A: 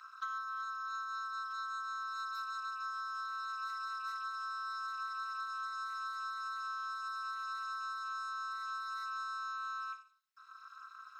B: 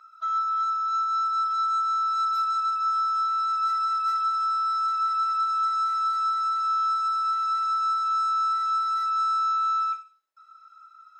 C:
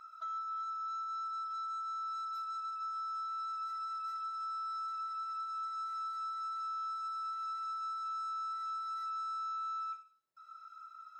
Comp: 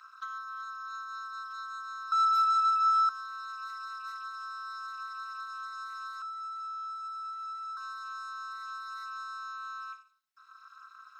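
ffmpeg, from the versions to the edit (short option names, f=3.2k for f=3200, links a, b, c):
-filter_complex "[0:a]asplit=3[a][b][c];[a]atrim=end=2.122[d];[1:a]atrim=start=2.118:end=3.092[e];[b]atrim=start=3.088:end=6.222[f];[2:a]atrim=start=6.218:end=7.772[g];[c]atrim=start=7.768[h];[d][e]acrossfade=d=0.004:c1=hsin:c2=hsin[i];[i][f]acrossfade=d=0.004:c1=hsin:c2=hsin[j];[j][g]acrossfade=d=0.004:c1=hsin:c2=hsin[k];[k][h]acrossfade=d=0.004:c1=hsin:c2=hsin"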